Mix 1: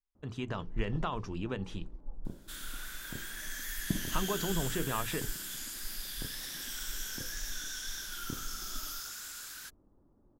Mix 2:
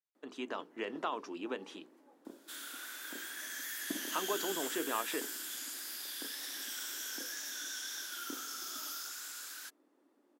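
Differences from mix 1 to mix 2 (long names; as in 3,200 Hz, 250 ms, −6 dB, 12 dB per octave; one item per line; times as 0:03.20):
first sound: remove low-pass filter 1,200 Hz 24 dB per octave
master: add Chebyshev high-pass filter 270 Hz, order 4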